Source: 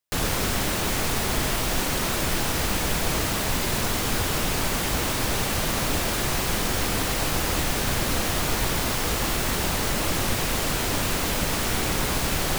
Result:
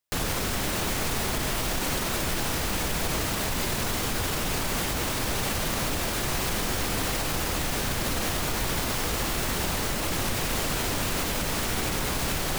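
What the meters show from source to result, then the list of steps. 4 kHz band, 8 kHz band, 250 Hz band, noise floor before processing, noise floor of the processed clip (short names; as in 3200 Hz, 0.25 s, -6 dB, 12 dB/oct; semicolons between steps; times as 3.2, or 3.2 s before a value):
-3.0 dB, -3.0 dB, -3.0 dB, -26 dBFS, -29 dBFS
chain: limiter -18 dBFS, peak gain reduction 7 dB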